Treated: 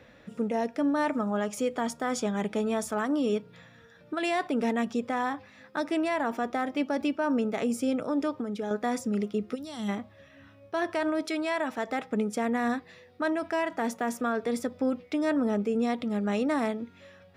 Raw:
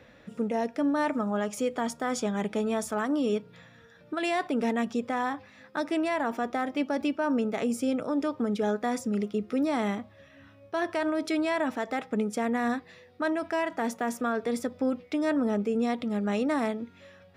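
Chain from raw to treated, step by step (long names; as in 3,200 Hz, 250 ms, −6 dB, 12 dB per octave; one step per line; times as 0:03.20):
0:08.30–0:08.71: downward compressor, threshold −30 dBFS, peak gain reduction 6.5 dB
0:09.55–0:09.89: gain on a spectral selection 230–2,700 Hz −14 dB
0:11.21–0:11.78: low-shelf EQ 330 Hz −7.5 dB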